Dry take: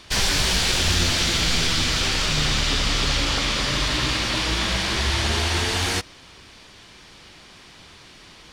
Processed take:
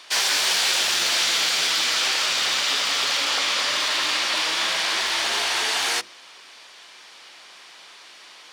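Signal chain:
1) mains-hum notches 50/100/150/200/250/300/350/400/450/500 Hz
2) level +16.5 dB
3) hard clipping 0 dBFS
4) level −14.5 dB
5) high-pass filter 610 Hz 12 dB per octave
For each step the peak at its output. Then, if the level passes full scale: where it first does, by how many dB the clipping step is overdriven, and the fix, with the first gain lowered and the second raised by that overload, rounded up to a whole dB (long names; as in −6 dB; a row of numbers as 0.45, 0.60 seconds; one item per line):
−8.5, +8.0, 0.0, −14.5, −9.5 dBFS
step 2, 8.0 dB
step 2 +8.5 dB, step 4 −6.5 dB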